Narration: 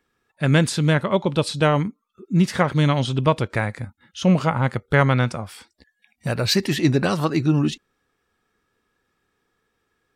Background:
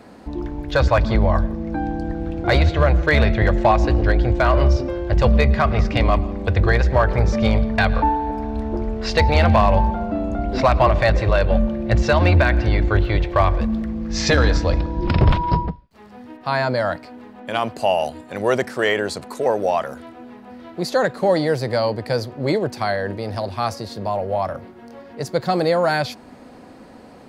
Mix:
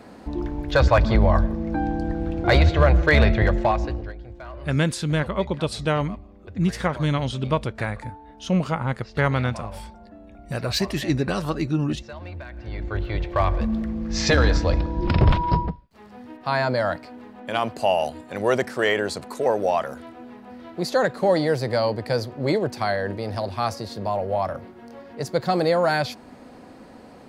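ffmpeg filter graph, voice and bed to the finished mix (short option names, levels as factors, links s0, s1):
-filter_complex "[0:a]adelay=4250,volume=0.596[s0];[1:a]volume=9.44,afade=t=out:st=3.27:d=0.87:silence=0.0841395,afade=t=in:st=12.54:d=1.24:silence=0.1[s1];[s0][s1]amix=inputs=2:normalize=0"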